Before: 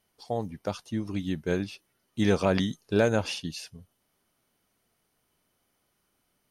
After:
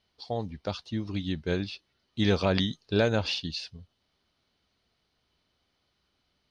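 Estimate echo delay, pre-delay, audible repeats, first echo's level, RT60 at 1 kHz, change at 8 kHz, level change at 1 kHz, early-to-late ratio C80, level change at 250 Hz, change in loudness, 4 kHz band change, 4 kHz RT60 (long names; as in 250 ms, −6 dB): no echo audible, no reverb audible, no echo audible, no echo audible, no reverb audible, −5.5 dB, −1.5 dB, no reverb audible, −1.5 dB, −0.5 dB, +5.0 dB, no reverb audible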